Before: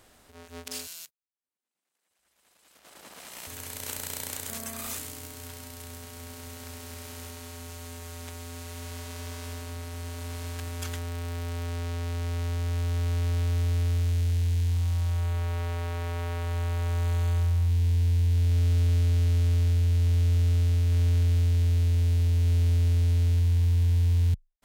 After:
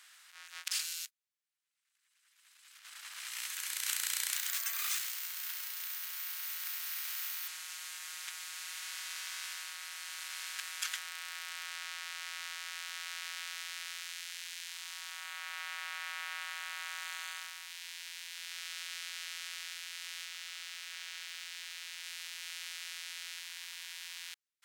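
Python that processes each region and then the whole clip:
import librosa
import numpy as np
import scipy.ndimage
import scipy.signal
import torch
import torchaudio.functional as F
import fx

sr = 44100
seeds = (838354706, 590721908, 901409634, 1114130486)

y = fx.chain(x, sr, fx.resample_bad(factor=3, down='filtered', up='zero_stuff'),
    fx.peak_eq(hz=250.0, db=-8.0, octaves=0.35), at=(4.34, 7.48))
y = fx.chain(y, sr, fx.highpass(hz=360.0, slope=24),
    fx.clip_hard(threshold_db=-31.0), at=(20.25, 22.04))
y = scipy.signal.sosfilt(scipy.signal.butter(4, 1400.0, 'highpass', fs=sr, output='sos'), y)
y = fx.high_shelf(y, sr, hz=11000.0, db=-8.5)
y = y * librosa.db_to_amplitude(4.5)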